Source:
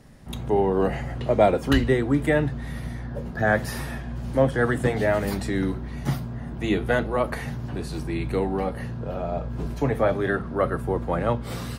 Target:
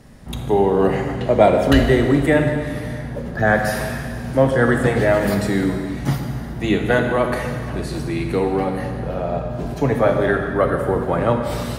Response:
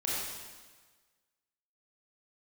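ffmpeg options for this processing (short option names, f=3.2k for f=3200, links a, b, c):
-filter_complex "[0:a]asplit=2[a][b];[1:a]atrim=start_sample=2205,asetrate=30429,aresample=44100[c];[b][c]afir=irnorm=-1:irlink=0,volume=-11dB[d];[a][d]amix=inputs=2:normalize=0,volume=2.5dB"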